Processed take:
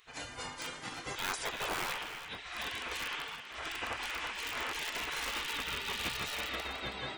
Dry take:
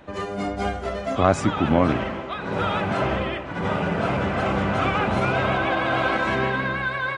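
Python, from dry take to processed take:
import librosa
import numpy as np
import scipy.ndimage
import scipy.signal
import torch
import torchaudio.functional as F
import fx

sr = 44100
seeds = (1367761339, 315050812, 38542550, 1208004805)

p1 = fx.high_shelf(x, sr, hz=4600.0, db=9.5)
p2 = (np.mod(10.0 ** (14.0 / 20.0) * p1 + 1.0, 2.0) - 1.0) / 10.0 ** (14.0 / 20.0)
p3 = p1 + F.gain(torch.from_numpy(p2), -10.0).numpy()
p4 = fx.spec_gate(p3, sr, threshold_db=-15, keep='weak')
p5 = p4 + 10.0 ** (-12.0 / 20.0) * np.pad(p4, (int(323 * sr / 1000.0), 0))[:len(p4)]
y = F.gain(torch.from_numpy(p5), -7.0).numpy()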